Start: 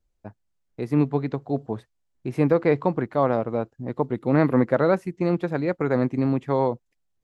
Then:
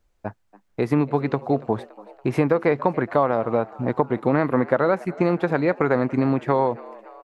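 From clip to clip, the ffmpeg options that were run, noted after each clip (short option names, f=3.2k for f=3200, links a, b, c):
-filter_complex "[0:a]equalizer=f=1.2k:t=o:w=2.8:g=7.5,acompressor=threshold=-23dB:ratio=4,asplit=6[a][b][c][d][e][f];[b]adelay=283,afreqshift=95,volume=-21dB[g];[c]adelay=566,afreqshift=190,volume=-25.7dB[h];[d]adelay=849,afreqshift=285,volume=-30.5dB[i];[e]adelay=1132,afreqshift=380,volume=-35.2dB[j];[f]adelay=1415,afreqshift=475,volume=-39.9dB[k];[a][g][h][i][j][k]amix=inputs=6:normalize=0,volume=6dB"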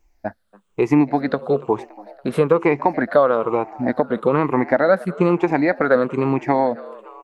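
-af "afftfilt=real='re*pow(10,12/40*sin(2*PI*(0.71*log(max(b,1)*sr/1024/100)/log(2)-(-1.1)*(pts-256)/sr)))':imag='im*pow(10,12/40*sin(2*PI*(0.71*log(max(b,1)*sr/1024/100)/log(2)-(-1.1)*(pts-256)/sr)))':win_size=1024:overlap=0.75,equalizer=f=110:t=o:w=0.71:g=-9.5,volume=2dB"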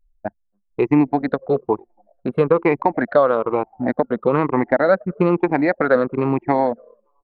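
-af "anlmdn=631"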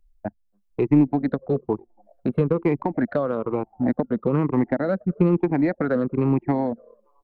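-filter_complex "[0:a]acrossover=split=310[a][b];[b]acompressor=threshold=-40dB:ratio=2[c];[a][c]amix=inputs=2:normalize=0,asplit=2[d][e];[e]aeval=exprs='clip(val(0),-1,0.0944)':c=same,volume=-9dB[f];[d][f]amix=inputs=2:normalize=0"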